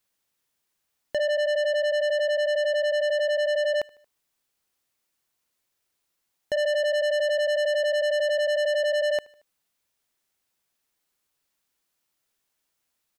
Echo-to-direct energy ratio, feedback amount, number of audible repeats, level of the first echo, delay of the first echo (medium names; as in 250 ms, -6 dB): -22.5 dB, 52%, 2, -24.0 dB, 76 ms